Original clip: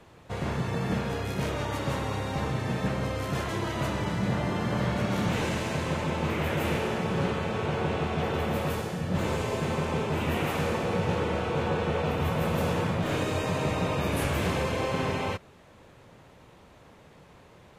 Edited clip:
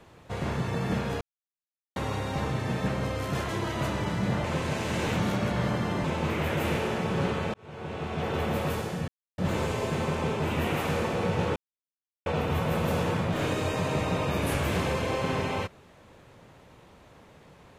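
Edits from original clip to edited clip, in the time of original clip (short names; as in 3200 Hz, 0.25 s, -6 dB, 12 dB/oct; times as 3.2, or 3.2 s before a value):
1.21–1.96 mute
4.44–6.04 reverse
7.54–8.4 fade in
9.08 insert silence 0.30 s
11.26–11.96 mute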